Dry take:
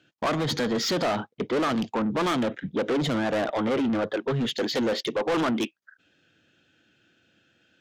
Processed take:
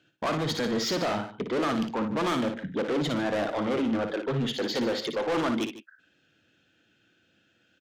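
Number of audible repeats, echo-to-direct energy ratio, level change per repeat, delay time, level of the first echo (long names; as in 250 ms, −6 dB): 2, −6.5 dB, repeats not evenly spaced, 58 ms, −7.0 dB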